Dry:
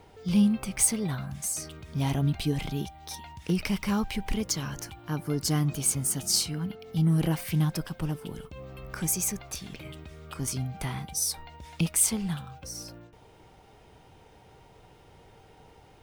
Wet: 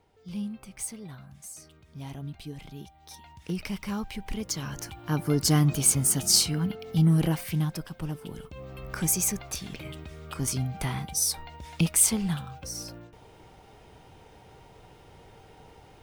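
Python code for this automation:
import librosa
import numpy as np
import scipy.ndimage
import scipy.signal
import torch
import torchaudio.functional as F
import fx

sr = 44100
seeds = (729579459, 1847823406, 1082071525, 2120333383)

y = fx.gain(x, sr, db=fx.line((2.63, -12.0), (3.37, -5.0), (4.26, -5.0), (5.19, 4.5), (6.86, 4.5), (7.85, -4.0), (8.91, 2.5)))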